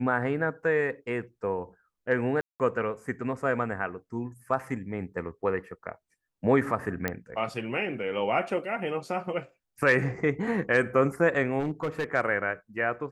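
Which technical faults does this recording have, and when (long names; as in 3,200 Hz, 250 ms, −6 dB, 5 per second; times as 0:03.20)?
0:02.41–0:02.60: drop-out 188 ms
0:07.08: click −13 dBFS
0:11.59–0:12.04: clipping −24.5 dBFS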